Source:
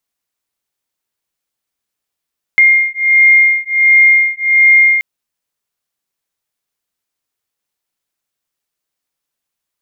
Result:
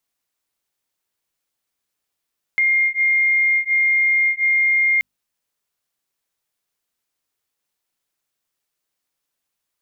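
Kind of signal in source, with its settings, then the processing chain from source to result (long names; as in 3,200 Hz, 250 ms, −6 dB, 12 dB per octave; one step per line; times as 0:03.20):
two tones that beat 2,120 Hz, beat 1.4 Hz, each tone −9.5 dBFS 2.43 s
mains-hum notches 50/100/150/200/250 Hz
brickwall limiter −13.5 dBFS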